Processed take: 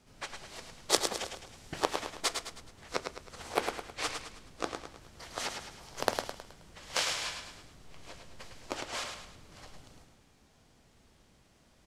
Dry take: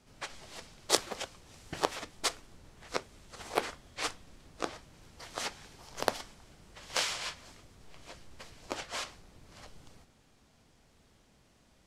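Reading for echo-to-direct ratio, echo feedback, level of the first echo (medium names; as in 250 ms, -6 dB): -5.0 dB, 43%, -6.0 dB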